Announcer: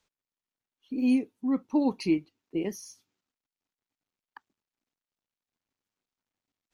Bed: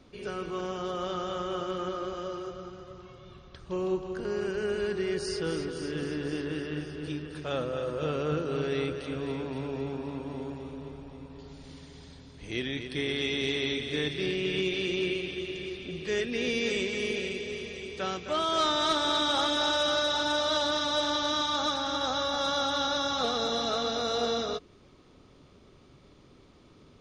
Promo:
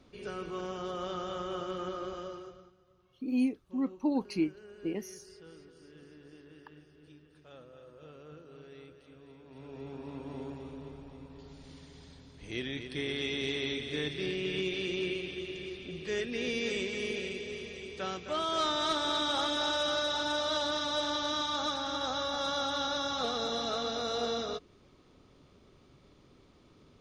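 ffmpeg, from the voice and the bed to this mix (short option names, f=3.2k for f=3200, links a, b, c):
-filter_complex "[0:a]adelay=2300,volume=-4.5dB[a];[1:a]volume=13dB,afade=t=out:st=2.15:d=0.59:silence=0.141254,afade=t=in:st=9.43:d=0.95:silence=0.141254[b];[a][b]amix=inputs=2:normalize=0"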